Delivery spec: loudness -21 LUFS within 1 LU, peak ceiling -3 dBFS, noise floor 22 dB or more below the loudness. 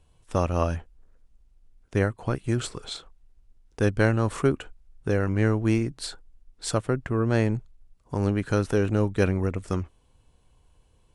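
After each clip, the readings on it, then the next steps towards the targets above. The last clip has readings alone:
loudness -26.5 LUFS; peak level -6.0 dBFS; loudness target -21.0 LUFS
-> trim +5.5 dB; peak limiter -3 dBFS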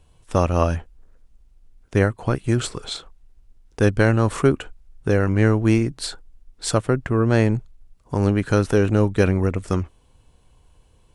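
loudness -21.0 LUFS; peak level -3.0 dBFS; noise floor -57 dBFS

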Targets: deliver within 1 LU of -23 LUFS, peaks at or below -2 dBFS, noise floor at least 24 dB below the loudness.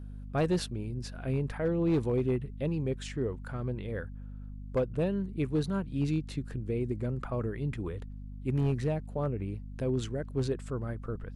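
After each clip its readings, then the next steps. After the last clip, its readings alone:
clipped samples 0.7%; clipping level -21.5 dBFS; hum 50 Hz; highest harmonic 250 Hz; hum level -40 dBFS; loudness -33.0 LUFS; peak level -21.5 dBFS; loudness target -23.0 LUFS
-> clip repair -21.5 dBFS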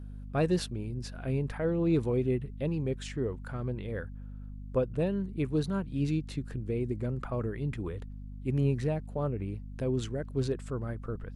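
clipped samples 0.0%; hum 50 Hz; highest harmonic 250 Hz; hum level -40 dBFS
-> de-hum 50 Hz, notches 5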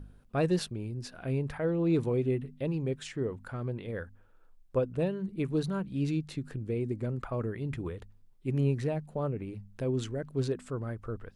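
hum not found; loudness -33.0 LUFS; peak level -17.0 dBFS; loudness target -23.0 LUFS
-> trim +10 dB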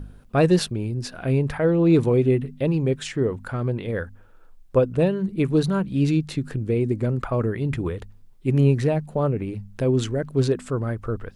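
loudness -23.0 LUFS; peak level -7.0 dBFS; noise floor -48 dBFS

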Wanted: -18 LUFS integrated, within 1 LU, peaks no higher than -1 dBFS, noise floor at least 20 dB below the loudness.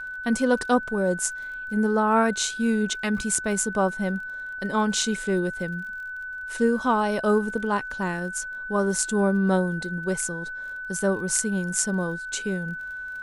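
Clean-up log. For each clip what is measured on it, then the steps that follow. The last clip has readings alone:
tick rate 32 per s; steady tone 1.5 kHz; tone level -32 dBFS; loudness -25.0 LUFS; peak level -5.0 dBFS; loudness target -18.0 LUFS
-> de-click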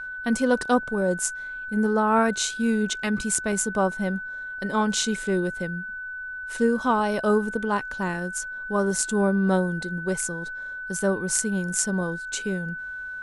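tick rate 0 per s; steady tone 1.5 kHz; tone level -32 dBFS
-> band-stop 1.5 kHz, Q 30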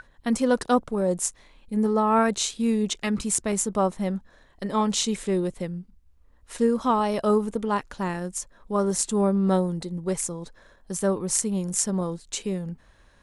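steady tone not found; loudness -25.5 LUFS; peak level -5.5 dBFS; loudness target -18.0 LUFS
-> trim +7.5 dB; peak limiter -1 dBFS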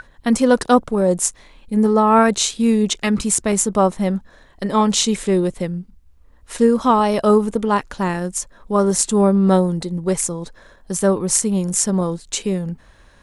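loudness -18.0 LUFS; peak level -1.0 dBFS; noise floor -50 dBFS

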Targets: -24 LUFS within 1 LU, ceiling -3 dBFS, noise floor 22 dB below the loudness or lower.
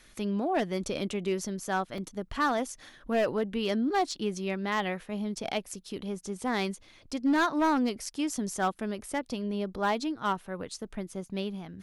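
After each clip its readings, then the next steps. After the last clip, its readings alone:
clipped samples 0.7%; clipping level -20.5 dBFS; dropouts 1; longest dropout 1.6 ms; loudness -31.5 LUFS; peak level -20.5 dBFS; loudness target -24.0 LUFS
-> clip repair -20.5 dBFS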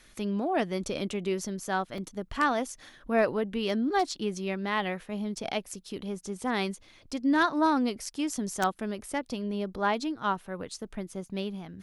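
clipped samples 0.0%; dropouts 1; longest dropout 1.6 ms
-> interpolate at 1.98 s, 1.6 ms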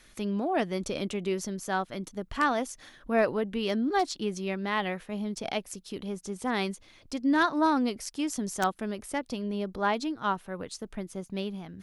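dropouts 0; loudness -30.5 LUFS; peak level -11.5 dBFS; loudness target -24.0 LUFS
-> trim +6.5 dB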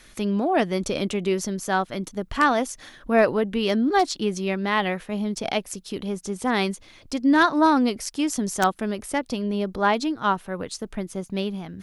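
loudness -24.0 LUFS; peak level -5.0 dBFS; noise floor -51 dBFS

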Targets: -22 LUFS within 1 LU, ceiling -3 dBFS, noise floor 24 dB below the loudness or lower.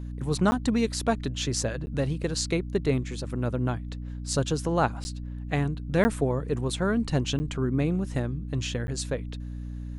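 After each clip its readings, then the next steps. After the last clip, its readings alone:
dropouts 6; longest dropout 10 ms; hum 60 Hz; highest harmonic 300 Hz; hum level -33 dBFS; loudness -28.5 LUFS; peak level -10.5 dBFS; loudness target -22.0 LUFS
-> interpolate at 0.51/1.86/5.04/6.04/7.39/8.87 s, 10 ms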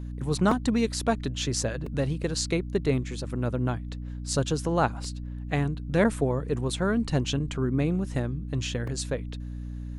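dropouts 0; hum 60 Hz; highest harmonic 300 Hz; hum level -33 dBFS
-> hum notches 60/120/180/240/300 Hz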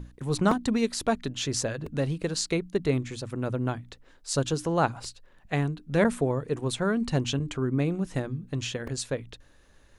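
hum not found; loudness -28.5 LUFS; peak level -11.0 dBFS; loudness target -22.0 LUFS
-> trim +6.5 dB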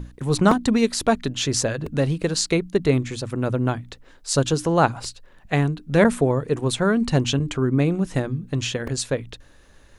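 loudness -22.0 LUFS; peak level -4.5 dBFS; noise floor -51 dBFS

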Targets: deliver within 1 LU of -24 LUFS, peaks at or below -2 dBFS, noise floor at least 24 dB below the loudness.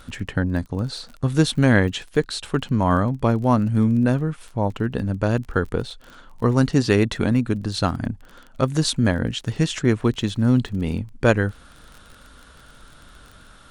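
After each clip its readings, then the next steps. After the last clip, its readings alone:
tick rate 24 per s; loudness -22.0 LUFS; peak level -1.5 dBFS; loudness target -24.0 LUFS
-> de-click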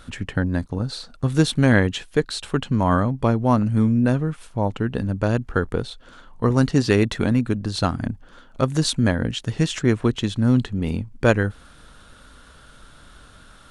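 tick rate 0 per s; loudness -22.0 LUFS; peak level -1.5 dBFS; loudness target -24.0 LUFS
-> trim -2 dB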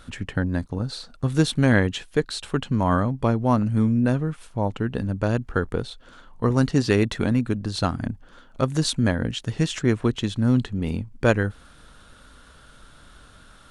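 loudness -24.0 LUFS; peak level -3.5 dBFS; noise floor -51 dBFS

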